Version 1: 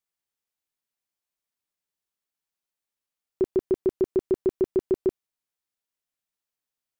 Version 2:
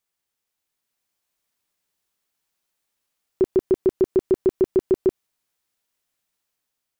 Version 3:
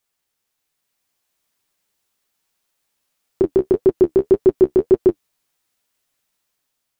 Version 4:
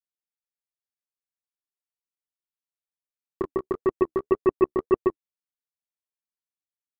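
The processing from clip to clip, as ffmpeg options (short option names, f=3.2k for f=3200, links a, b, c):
-af "dynaudnorm=f=360:g=5:m=4dB,alimiter=limit=-18dB:level=0:latency=1:release=90,volume=6.5dB"
-af "flanger=delay=7.2:depth=7.9:regen=-28:speed=1.8:shape=sinusoidal,volume=9dB"
-af "aeval=exprs='0.668*(cos(1*acos(clip(val(0)/0.668,-1,1)))-cos(1*PI/2))+0.168*(cos(3*acos(clip(val(0)/0.668,-1,1)))-cos(3*PI/2))+0.0299*(cos(7*acos(clip(val(0)/0.668,-1,1)))-cos(7*PI/2))':c=same,volume=-6dB"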